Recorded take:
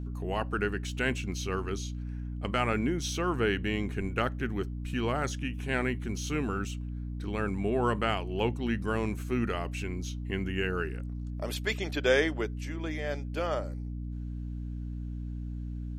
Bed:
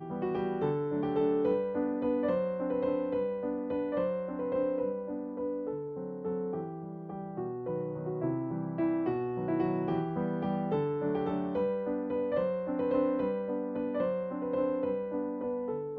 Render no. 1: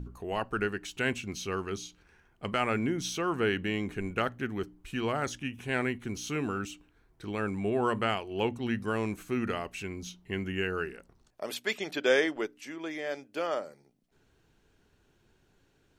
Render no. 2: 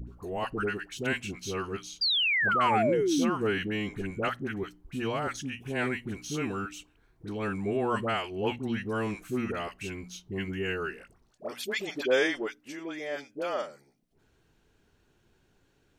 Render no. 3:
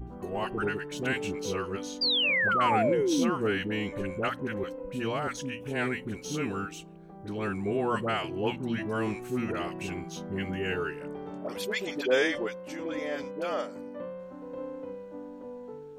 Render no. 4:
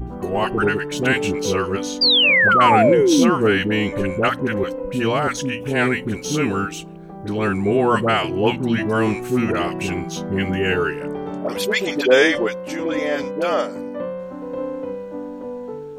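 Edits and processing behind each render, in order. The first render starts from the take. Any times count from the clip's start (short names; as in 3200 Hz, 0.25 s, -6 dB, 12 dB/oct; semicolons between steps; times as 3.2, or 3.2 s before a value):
de-hum 60 Hz, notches 5
dispersion highs, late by 74 ms, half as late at 840 Hz; 2.01–3.3 painted sound fall 210–4900 Hz -26 dBFS
add bed -8 dB
gain +11.5 dB; limiter -3 dBFS, peak gain reduction 1 dB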